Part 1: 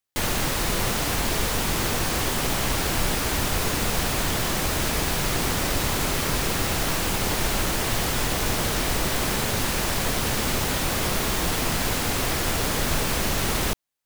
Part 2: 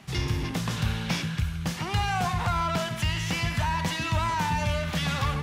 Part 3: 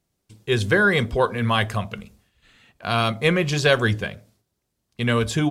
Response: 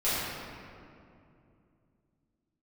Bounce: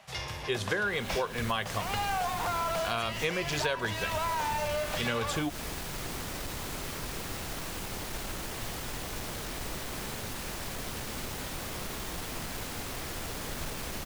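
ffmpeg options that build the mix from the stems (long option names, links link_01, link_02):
-filter_complex "[0:a]aeval=exprs='clip(val(0),-1,0.0944)':channel_layout=same,adelay=700,volume=-12.5dB[link_01];[1:a]lowshelf=frequency=420:width_type=q:width=3:gain=-10,volume=-3.5dB[link_02];[2:a]equalizer=frequency=140:width_type=o:width=1.8:gain=-8.5,volume=-4dB,asplit=2[link_03][link_04];[link_04]apad=whole_len=650676[link_05];[link_01][link_05]sidechaincompress=threshold=-27dB:ratio=8:attack=8.4:release=270[link_06];[link_06][link_02][link_03]amix=inputs=3:normalize=0,acompressor=threshold=-27dB:ratio=6"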